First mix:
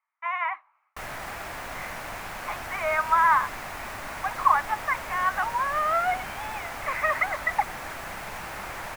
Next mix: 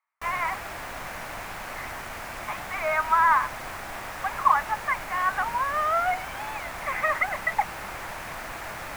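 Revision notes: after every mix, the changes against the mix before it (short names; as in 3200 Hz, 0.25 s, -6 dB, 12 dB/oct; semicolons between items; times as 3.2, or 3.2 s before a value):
background: entry -0.75 s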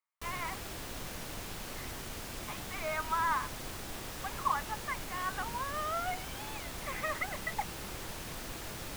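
master: add band shelf 1200 Hz -11.5 dB 2.3 oct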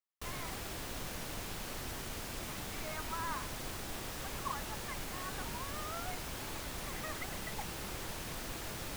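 speech -9.5 dB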